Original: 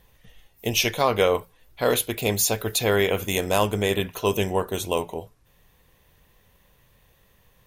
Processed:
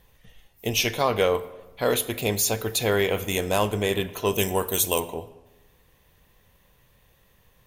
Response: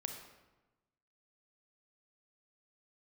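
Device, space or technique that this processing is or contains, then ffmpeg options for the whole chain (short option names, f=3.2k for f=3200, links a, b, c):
saturated reverb return: -filter_complex "[0:a]asettb=1/sr,asplit=3[a][b][c];[a]atrim=end=4.384[d];[b]atrim=start=4.38:end=5,asetpts=PTS-STARTPTS,afade=t=in:d=0.004:c=qsin,afade=t=out:st=0.616:d=0.004:c=qsin,aemphasis=mode=production:type=75kf[e];[c]atrim=start=4.996[f];[d][e]acrossfade=d=0.004:c1=hsin:c2=qsin[g];[g][f]acrossfade=d=0.004:c1=qsin:c2=hsin,asplit=2[h][i];[1:a]atrim=start_sample=2205[j];[i][j]afir=irnorm=-1:irlink=0,asoftclip=type=tanh:threshold=-19.5dB,volume=-6dB[k];[h][k]amix=inputs=2:normalize=0,volume=-3.5dB"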